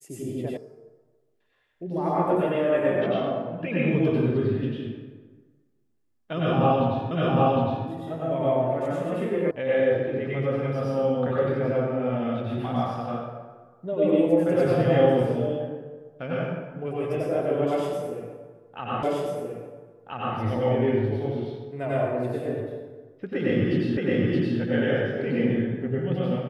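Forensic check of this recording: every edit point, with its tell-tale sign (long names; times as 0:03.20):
0:00.57: cut off before it has died away
0:07.11: the same again, the last 0.76 s
0:09.51: cut off before it has died away
0:19.03: the same again, the last 1.33 s
0:23.97: the same again, the last 0.62 s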